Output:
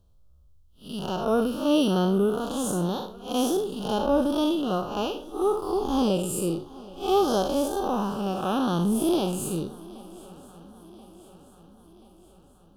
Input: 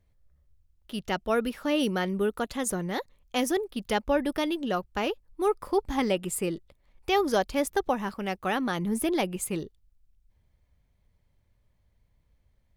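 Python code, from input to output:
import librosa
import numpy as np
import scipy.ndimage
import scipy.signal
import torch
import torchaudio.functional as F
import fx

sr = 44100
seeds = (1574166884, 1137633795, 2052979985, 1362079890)

y = fx.spec_blur(x, sr, span_ms=155.0)
y = scipy.signal.sosfilt(scipy.signal.cheby1(2, 1.0, [1300.0, 3100.0], 'bandstop', fs=sr, output='sos'), y)
y = fx.echo_swing(y, sr, ms=1032, ratio=3, feedback_pct=54, wet_db=-21.5)
y = y * 10.0 ** (8.5 / 20.0)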